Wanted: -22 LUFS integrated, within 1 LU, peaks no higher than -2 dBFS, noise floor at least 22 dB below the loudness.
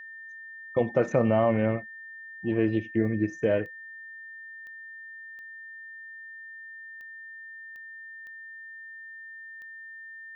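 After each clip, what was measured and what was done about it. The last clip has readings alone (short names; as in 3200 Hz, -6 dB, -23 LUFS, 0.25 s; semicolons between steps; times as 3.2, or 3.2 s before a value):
clicks 8; steady tone 1800 Hz; tone level -41 dBFS; loudness -26.5 LUFS; peak -11.0 dBFS; loudness target -22.0 LUFS
-> de-click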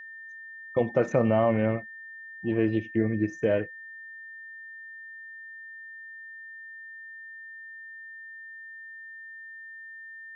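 clicks 0; steady tone 1800 Hz; tone level -41 dBFS
-> notch 1800 Hz, Q 30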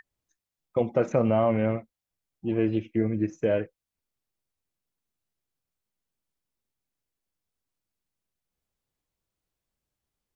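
steady tone none; loudness -26.5 LUFS; peak -11.0 dBFS; loudness target -22.0 LUFS
-> gain +4.5 dB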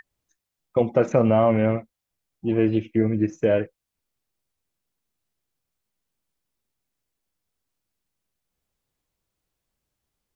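loudness -22.0 LUFS; peak -6.5 dBFS; noise floor -84 dBFS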